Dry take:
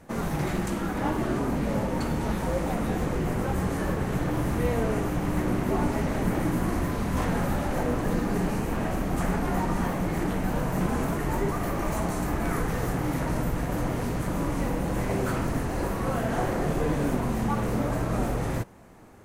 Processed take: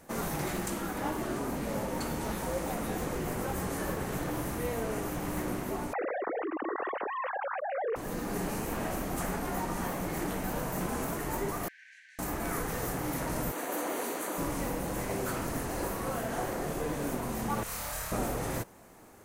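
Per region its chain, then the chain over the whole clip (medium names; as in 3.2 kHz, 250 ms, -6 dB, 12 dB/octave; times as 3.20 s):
5.93–7.96 s: formants replaced by sine waves + band-pass 190–2500 Hz + level flattener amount 70%
11.68–12.19 s: brick-wall FIR high-pass 1.5 kHz + tape spacing loss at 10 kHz 38 dB
13.52–14.38 s: high-pass 280 Hz 24 dB/octave + band-stop 5.2 kHz, Q 6.4
17.63–18.12 s: amplifier tone stack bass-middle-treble 10-0-10 + flutter echo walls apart 4.6 m, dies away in 0.6 s
whole clip: tone controls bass -6 dB, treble +4 dB; gain riding 0.5 s; treble shelf 11 kHz +8.5 dB; trim -6 dB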